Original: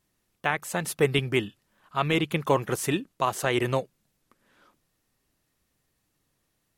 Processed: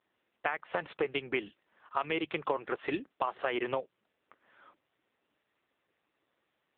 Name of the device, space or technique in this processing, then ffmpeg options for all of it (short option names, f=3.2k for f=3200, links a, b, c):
voicemail: -af "highpass=360,lowpass=3.2k,acompressor=threshold=-32dB:ratio=10,volume=5dB" -ar 8000 -c:a libopencore_amrnb -b:a 6700